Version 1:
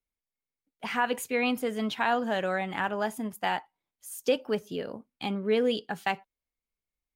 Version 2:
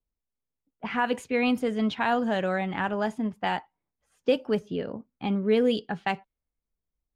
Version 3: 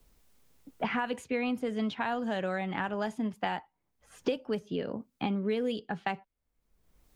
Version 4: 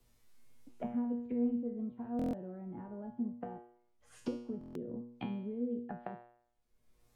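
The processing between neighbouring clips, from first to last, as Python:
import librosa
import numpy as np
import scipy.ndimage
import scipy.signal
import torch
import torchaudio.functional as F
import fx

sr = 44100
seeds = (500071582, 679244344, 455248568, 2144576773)

y1 = fx.env_lowpass(x, sr, base_hz=1200.0, full_db=-22.5)
y1 = fx.low_shelf(y1, sr, hz=280.0, db=8.5)
y2 = fx.band_squash(y1, sr, depth_pct=100)
y2 = F.gain(torch.from_numpy(y2), -6.0).numpy()
y3 = fx.env_lowpass_down(y2, sr, base_hz=330.0, full_db=-30.5)
y3 = fx.comb_fb(y3, sr, f0_hz=120.0, decay_s=0.63, harmonics='all', damping=0.0, mix_pct=90)
y3 = fx.buffer_glitch(y3, sr, at_s=(2.17, 4.59), block=1024, repeats=6)
y3 = F.gain(torch.from_numpy(y3), 9.0).numpy()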